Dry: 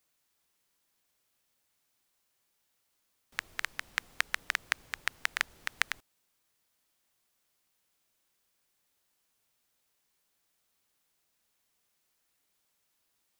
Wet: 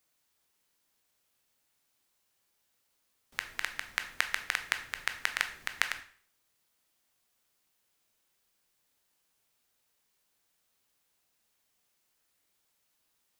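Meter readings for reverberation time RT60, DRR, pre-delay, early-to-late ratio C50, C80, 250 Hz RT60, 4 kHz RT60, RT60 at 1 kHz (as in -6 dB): 0.50 s, 7.0 dB, 7 ms, 12.0 dB, 15.5 dB, 0.50 s, 0.45 s, 0.50 s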